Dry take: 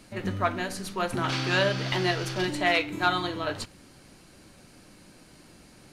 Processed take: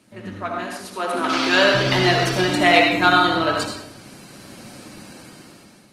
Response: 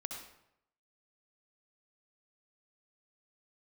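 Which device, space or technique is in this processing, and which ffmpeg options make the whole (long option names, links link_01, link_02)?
far-field microphone of a smart speaker: -filter_complex "[0:a]asplit=3[link_01][link_02][link_03];[link_01]afade=type=out:start_time=0.74:duration=0.02[link_04];[link_02]highpass=frequency=240:width=0.5412,highpass=frequency=240:width=1.3066,afade=type=in:start_time=0.74:duration=0.02,afade=type=out:start_time=1.73:duration=0.02[link_05];[link_03]afade=type=in:start_time=1.73:duration=0.02[link_06];[link_04][link_05][link_06]amix=inputs=3:normalize=0[link_07];[1:a]atrim=start_sample=2205[link_08];[link_07][link_08]afir=irnorm=-1:irlink=0,highpass=frequency=100:width=0.5412,highpass=frequency=100:width=1.3066,dynaudnorm=framelen=470:gausssize=5:maxgain=16dB" -ar 48000 -c:a libopus -b:a 20k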